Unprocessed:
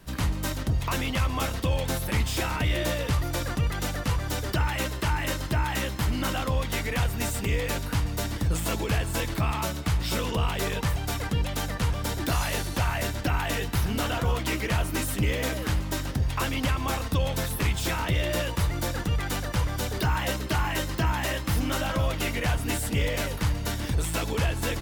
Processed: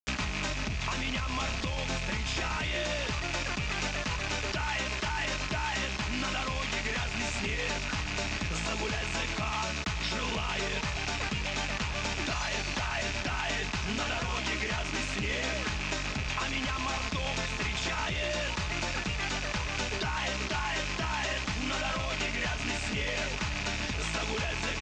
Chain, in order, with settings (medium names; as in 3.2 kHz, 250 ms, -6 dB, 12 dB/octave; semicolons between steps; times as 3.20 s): rattle on loud lows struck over -33 dBFS, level -23 dBFS; 0.49–2.57 s: bass shelf 160 Hz +6.5 dB; bit crusher 6-bit; steep low-pass 7 kHz 48 dB/octave; band-stop 470 Hz, Q 12; comb 4.7 ms, depth 35%; peak limiter -20 dBFS, peak gain reduction 9 dB; bass shelf 460 Hz -7 dB; three bands compressed up and down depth 70%